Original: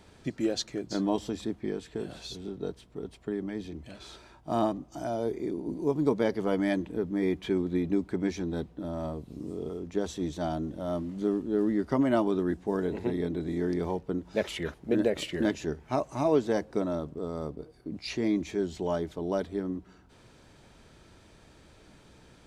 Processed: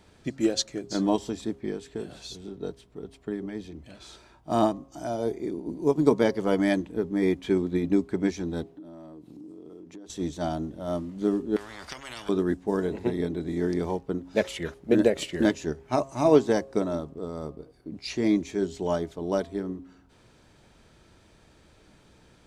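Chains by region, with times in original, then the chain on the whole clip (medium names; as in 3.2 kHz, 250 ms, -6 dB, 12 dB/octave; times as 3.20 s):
8.63–10.10 s: peaking EQ 310 Hz +12 dB 0.28 oct + compression 10:1, threshold -39 dBFS + high-pass 130 Hz
11.56–12.29 s: compression 5:1, threshold -27 dBFS + treble shelf 3.5 kHz -11.5 dB + spectrum-flattening compressor 10:1
whole clip: de-hum 135.4 Hz, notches 9; dynamic bell 7.4 kHz, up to +5 dB, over -58 dBFS, Q 1; upward expansion 1.5:1, over -37 dBFS; trim +7 dB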